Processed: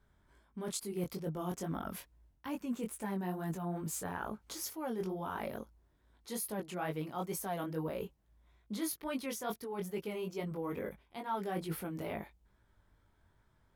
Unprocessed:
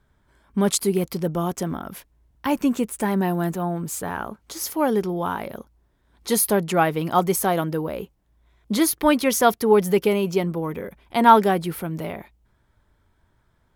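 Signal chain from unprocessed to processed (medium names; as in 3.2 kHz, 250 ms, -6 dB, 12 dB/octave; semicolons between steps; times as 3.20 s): reverse; compression 8:1, threshold -29 dBFS, peak gain reduction 20.5 dB; reverse; chorus 2.3 Hz, delay 18.5 ms, depth 4.2 ms; trim -3 dB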